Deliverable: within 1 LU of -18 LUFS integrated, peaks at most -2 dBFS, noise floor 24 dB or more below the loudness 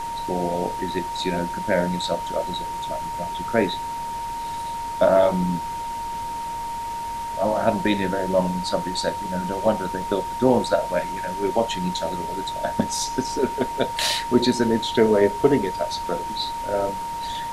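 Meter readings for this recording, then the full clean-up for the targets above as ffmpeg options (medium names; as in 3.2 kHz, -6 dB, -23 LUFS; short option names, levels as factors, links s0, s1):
steady tone 930 Hz; tone level -27 dBFS; noise floor -30 dBFS; noise floor target -48 dBFS; loudness -24.0 LUFS; peak level -5.0 dBFS; loudness target -18.0 LUFS
-> -af "bandreject=f=930:w=30"
-af "afftdn=nr=18:nf=-30"
-af "volume=2,alimiter=limit=0.794:level=0:latency=1"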